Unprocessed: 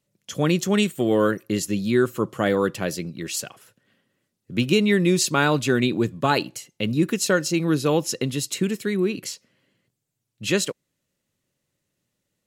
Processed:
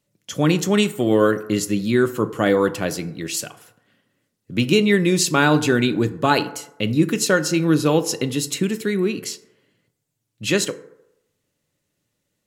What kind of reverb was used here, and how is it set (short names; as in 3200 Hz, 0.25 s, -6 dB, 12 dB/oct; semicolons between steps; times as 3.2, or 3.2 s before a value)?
FDN reverb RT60 0.85 s, low-frequency decay 0.75×, high-frequency decay 0.4×, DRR 10.5 dB; gain +2.5 dB